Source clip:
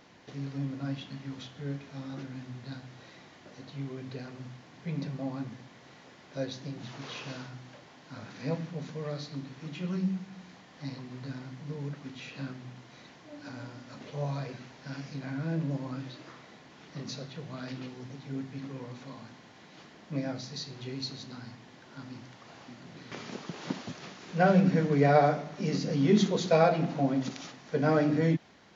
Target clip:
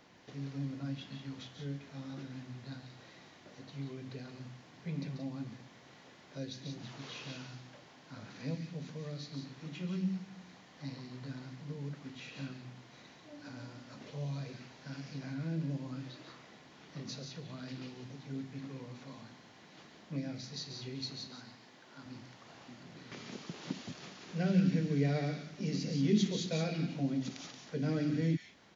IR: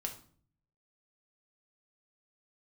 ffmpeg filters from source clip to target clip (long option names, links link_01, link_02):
-filter_complex "[0:a]asettb=1/sr,asplit=3[link_01][link_02][link_03];[link_01]atrim=end=21.274[link_04];[link_02]atrim=start=21.27:end=22.06,asetpts=PTS-STARTPTS,afade=type=in:duration=0.004:curve=qsin,afade=type=out:start_time=0.786:duration=0.004:curve=qsin,highpass=frequency=280:poles=1[link_05];[link_03]atrim=start=22.056[link_06];[link_04][link_05]acrossfade=duration=0.004:curve1=hsin:curve2=qsin[link_07];[link_07][link_06]acrossfade=duration=0.004:curve1=qsin:curve2=hsin,acrossover=split=400|2100[link_08][link_09][link_10];[link_09]acompressor=threshold=-48dB:ratio=6[link_11];[link_10]aecho=1:1:139.9|177.8:0.447|0.501[link_12];[link_08][link_11][link_12]amix=inputs=3:normalize=0,volume=-4dB"